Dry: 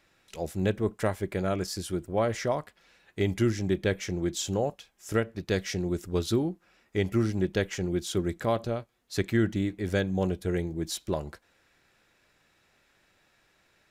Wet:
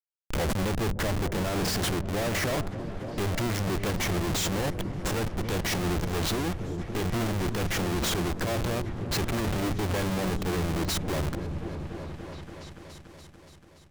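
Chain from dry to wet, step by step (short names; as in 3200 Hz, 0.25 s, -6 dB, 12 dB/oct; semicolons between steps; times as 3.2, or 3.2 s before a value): Schmitt trigger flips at -39.5 dBFS; repeats that get brighter 0.287 s, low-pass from 200 Hz, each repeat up 1 oct, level -6 dB; limiter -26.5 dBFS, peak gain reduction 5.5 dB; gain +4 dB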